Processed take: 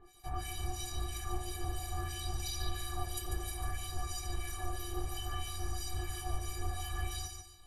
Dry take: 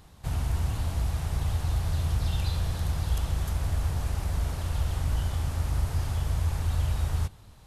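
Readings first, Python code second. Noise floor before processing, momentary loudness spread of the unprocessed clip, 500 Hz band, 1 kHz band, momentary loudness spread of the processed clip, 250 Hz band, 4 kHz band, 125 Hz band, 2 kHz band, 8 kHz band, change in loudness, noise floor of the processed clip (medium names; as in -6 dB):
-51 dBFS, 2 LU, -4.5 dB, -1.5 dB, 2 LU, -8.0 dB, -1.0 dB, -14.0 dB, -3.5 dB, +1.5 dB, -10.0 dB, -55 dBFS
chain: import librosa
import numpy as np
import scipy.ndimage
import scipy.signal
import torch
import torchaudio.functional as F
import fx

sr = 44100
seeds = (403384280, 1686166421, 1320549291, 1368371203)

p1 = fx.high_shelf(x, sr, hz=5500.0, db=5.0)
p2 = fx.stiff_resonator(p1, sr, f0_hz=350.0, decay_s=0.32, stiffness=0.03)
p3 = fx.harmonic_tremolo(p2, sr, hz=3.0, depth_pct=100, crossover_hz=1900.0)
p4 = p3 + fx.echo_feedback(p3, sr, ms=145, feedback_pct=28, wet_db=-6, dry=0)
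p5 = fx.bell_lfo(p4, sr, hz=0.61, low_hz=410.0, high_hz=6000.0, db=7)
y = p5 * 10.0 ** (14.5 / 20.0)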